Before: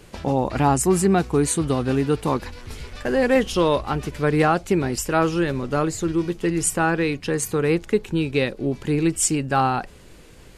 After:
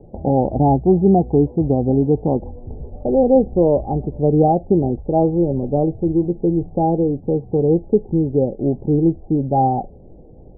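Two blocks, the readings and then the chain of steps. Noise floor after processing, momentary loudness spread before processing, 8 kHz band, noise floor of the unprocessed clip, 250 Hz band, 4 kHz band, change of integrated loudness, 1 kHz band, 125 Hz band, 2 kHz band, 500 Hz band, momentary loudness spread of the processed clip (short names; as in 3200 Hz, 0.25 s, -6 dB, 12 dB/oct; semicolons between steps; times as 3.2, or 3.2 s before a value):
-42 dBFS, 6 LU, under -40 dB, -46 dBFS, +5.0 dB, under -40 dB, +4.0 dB, +2.5 dB, +5.5 dB, under -40 dB, +5.0 dB, 7 LU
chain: Chebyshev low-pass 810 Hz, order 6; gain +5.5 dB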